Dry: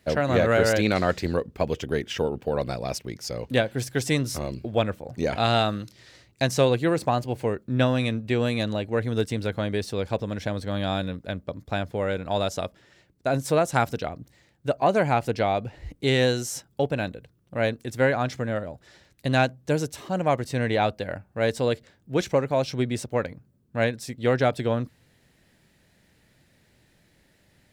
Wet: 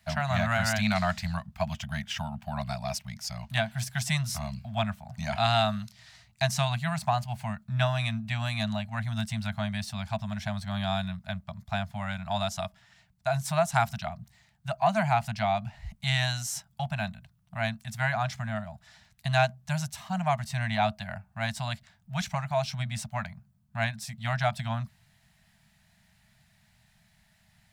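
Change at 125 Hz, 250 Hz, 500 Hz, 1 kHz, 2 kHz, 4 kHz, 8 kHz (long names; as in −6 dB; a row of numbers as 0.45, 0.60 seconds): −1.5, −7.0, −9.5, −1.5, −2.0, −1.5, −1.0 decibels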